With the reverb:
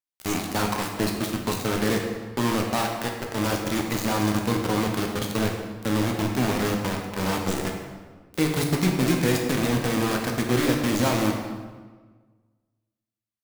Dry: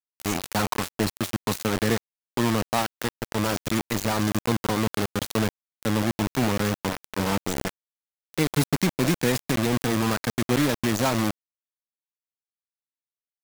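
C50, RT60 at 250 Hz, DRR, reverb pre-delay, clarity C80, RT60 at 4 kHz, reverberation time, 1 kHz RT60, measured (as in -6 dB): 3.5 dB, 1.6 s, 1.0 dB, 9 ms, 5.5 dB, 1.0 s, 1.4 s, 1.4 s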